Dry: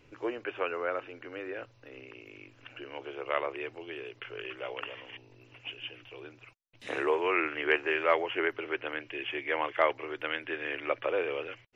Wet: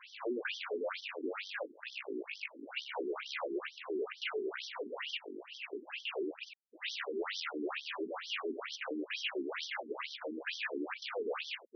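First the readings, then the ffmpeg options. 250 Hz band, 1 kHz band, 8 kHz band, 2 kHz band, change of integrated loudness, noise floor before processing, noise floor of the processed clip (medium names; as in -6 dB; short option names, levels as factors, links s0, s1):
-1.5 dB, -10.0 dB, no reading, -7.0 dB, -7.0 dB, -61 dBFS, -58 dBFS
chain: -filter_complex "[0:a]adynamicequalizer=threshold=0.00562:dfrequency=2400:dqfactor=2.8:tfrequency=2400:tqfactor=2.8:attack=5:release=100:ratio=0.375:range=2:mode=cutabove:tftype=bell,asplit=2[s0][s1];[s1]aeval=exprs='0.251*sin(PI/2*7.94*val(0)/0.251)':c=same,volume=0.631[s2];[s0][s2]amix=inputs=2:normalize=0,acrusher=bits=7:mix=0:aa=0.000001,volume=29.9,asoftclip=hard,volume=0.0335,areverse,acompressor=mode=upward:threshold=0.0126:ratio=2.5,areverse,afftfilt=real='re*between(b*sr/1024,290*pow(4400/290,0.5+0.5*sin(2*PI*2.2*pts/sr))/1.41,290*pow(4400/290,0.5+0.5*sin(2*PI*2.2*pts/sr))*1.41)':imag='im*between(b*sr/1024,290*pow(4400/290,0.5+0.5*sin(2*PI*2.2*pts/sr))/1.41,290*pow(4400/290,0.5+0.5*sin(2*PI*2.2*pts/sr))*1.41)':win_size=1024:overlap=0.75,volume=0.794"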